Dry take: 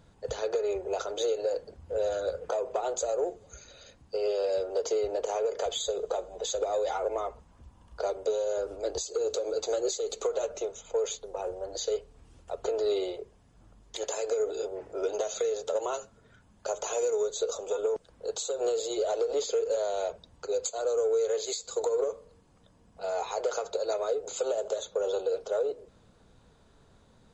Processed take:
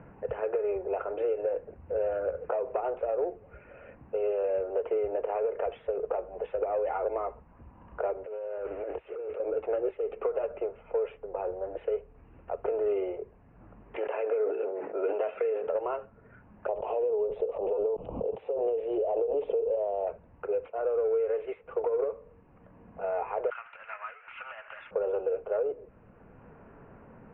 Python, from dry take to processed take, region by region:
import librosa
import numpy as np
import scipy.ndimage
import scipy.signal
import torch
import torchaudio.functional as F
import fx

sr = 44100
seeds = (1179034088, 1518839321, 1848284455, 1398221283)

y = fx.chain(x, sr, fx.crossing_spikes(level_db=-36.5),
    fx.low_shelf(hz=450.0, db=-7.5),
    fx.over_compress(threshold_db=-38.0, ratio=-1.0), at=(8.24, 9.4))
y = fx.chain(y, sr, fx.highpass(hz=220.0, slope=24),
    fx.high_shelf(hz=2200.0, db=5.5),
    fx.sustainer(db_per_s=61.0), at=(13.96, 15.67))
y = fx.chain(y, sr, fx.cheby1_bandstop(low_hz=870.0, high_hz=3600.0, order=2),
    fx.pre_swell(db_per_s=45.0), at=(16.68, 20.07))
y = fx.chain(y, sr, fx.zero_step(step_db=-46.5),
    fx.highpass(hz=1200.0, slope=24),
    fx.tilt_eq(slope=4.0), at=(23.5, 24.91))
y = fx.wiener(y, sr, points=9)
y = scipy.signal.sosfilt(scipy.signal.butter(16, 2800.0, 'lowpass', fs=sr, output='sos'), y)
y = fx.band_squash(y, sr, depth_pct=40)